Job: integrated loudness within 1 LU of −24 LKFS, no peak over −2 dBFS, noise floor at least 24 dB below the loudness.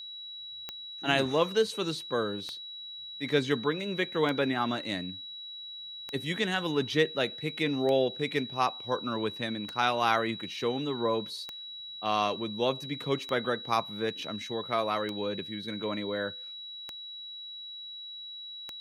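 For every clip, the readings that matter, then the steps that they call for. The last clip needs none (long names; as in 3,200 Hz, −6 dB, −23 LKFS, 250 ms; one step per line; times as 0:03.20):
number of clicks 11; interfering tone 3,900 Hz; level of the tone −40 dBFS; integrated loudness −31.5 LKFS; sample peak −10.5 dBFS; target loudness −24.0 LKFS
→ click removal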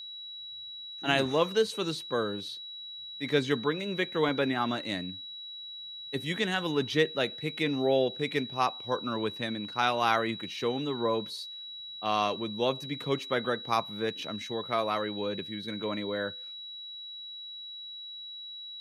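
number of clicks 0; interfering tone 3,900 Hz; level of the tone −40 dBFS
→ notch filter 3,900 Hz, Q 30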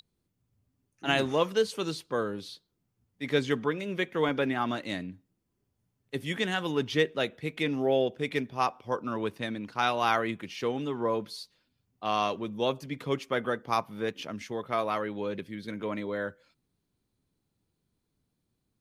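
interfering tone none found; integrated loudness −30.5 LKFS; sample peak −10.5 dBFS; target loudness −24.0 LKFS
→ level +6.5 dB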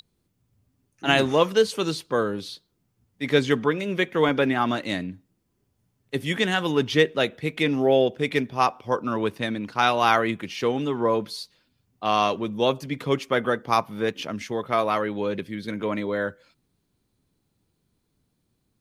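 integrated loudness −24.0 LKFS; sample peak −4.0 dBFS; background noise floor −73 dBFS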